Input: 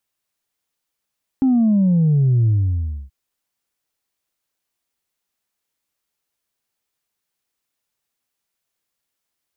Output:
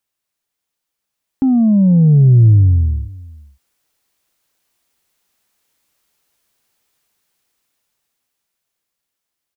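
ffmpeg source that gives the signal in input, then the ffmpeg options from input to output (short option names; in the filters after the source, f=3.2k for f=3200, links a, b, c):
-f lavfi -i "aevalsrc='0.237*clip((1.68-t)/0.63,0,1)*tanh(1.06*sin(2*PI*270*1.68/log(65/270)*(exp(log(65/270)*t/1.68)-1)))/tanh(1.06)':d=1.68:s=44100"
-af "dynaudnorm=f=330:g=13:m=12.5dB,aecho=1:1:484:0.0794"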